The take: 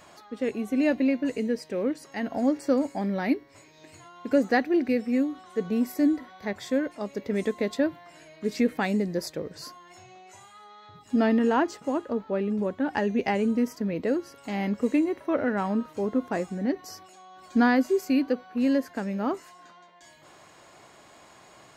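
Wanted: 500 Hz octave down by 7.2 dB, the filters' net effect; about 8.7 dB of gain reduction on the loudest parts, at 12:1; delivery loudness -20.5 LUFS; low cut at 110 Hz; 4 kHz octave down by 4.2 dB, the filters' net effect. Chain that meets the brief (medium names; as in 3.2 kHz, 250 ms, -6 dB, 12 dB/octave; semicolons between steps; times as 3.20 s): high-pass 110 Hz; peaking EQ 500 Hz -9 dB; peaking EQ 4 kHz -5.5 dB; compression 12:1, threshold -29 dBFS; trim +15 dB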